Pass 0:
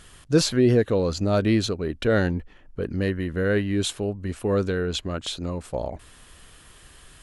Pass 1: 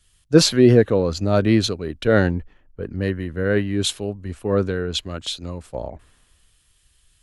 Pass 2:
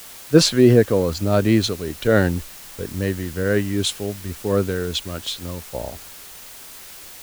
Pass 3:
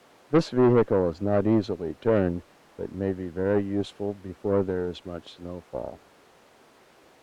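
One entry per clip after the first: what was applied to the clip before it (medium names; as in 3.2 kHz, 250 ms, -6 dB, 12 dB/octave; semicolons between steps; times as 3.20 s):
dynamic bell 8.2 kHz, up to -4 dB, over -46 dBFS, Q 1.1; three bands expanded up and down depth 70%; trim +2.5 dB
added noise white -40 dBFS
band-pass filter 410 Hz, Q 0.71; valve stage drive 14 dB, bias 0.55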